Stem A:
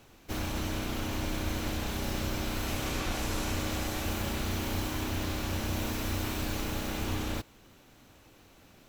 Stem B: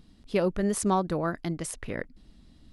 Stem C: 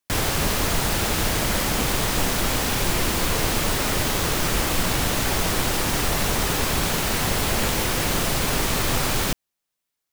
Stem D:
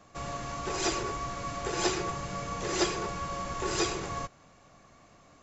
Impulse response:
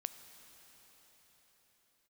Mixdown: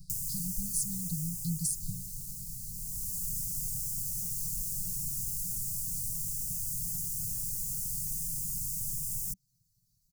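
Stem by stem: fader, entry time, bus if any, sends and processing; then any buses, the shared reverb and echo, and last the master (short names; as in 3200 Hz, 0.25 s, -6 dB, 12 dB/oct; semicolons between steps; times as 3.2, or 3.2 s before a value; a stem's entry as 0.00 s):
-11.5 dB, 1.50 s, no bus, no send, reverb removal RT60 1.2 s
+3.0 dB, 0.00 s, no bus, no send, high shelf 6300 Hz +11 dB; compressor, threshold -33 dBFS, peak gain reduction 12.5 dB
-9.5 dB, 0.00 s, bus A, no send, resonant high shelf 2500 Hz +12.5 dB, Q 1.5; auto duck -17 dB, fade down 1.80 s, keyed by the second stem
-16.0 dB, 0.00 s, bus A, no send, dry
bus A: 0.0 dB, Butterworth band-stop 3600 Hz, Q 0.55; compressor, threshold -34 dBFS, peak gain reduction 11 dB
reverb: off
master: Chebyshev band-stop 190–4500 Hz, order 5; comb 7 ms, depth 85%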